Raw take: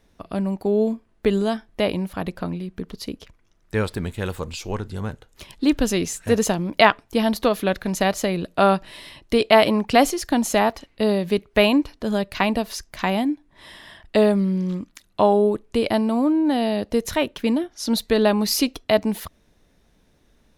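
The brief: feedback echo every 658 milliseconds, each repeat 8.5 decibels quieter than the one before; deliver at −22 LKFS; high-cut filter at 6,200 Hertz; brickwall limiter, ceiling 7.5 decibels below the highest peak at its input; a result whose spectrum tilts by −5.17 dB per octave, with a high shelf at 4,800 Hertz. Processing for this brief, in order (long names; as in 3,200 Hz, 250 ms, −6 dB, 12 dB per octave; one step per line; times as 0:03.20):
low-pass filter 6,200 Hz
high-shelf EQ 4,800 Hz −8.5 dB
brickwall limiter −9.5 dBFS
repeating echo 658 ms, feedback 38%, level −8.5 dB
level +1 dB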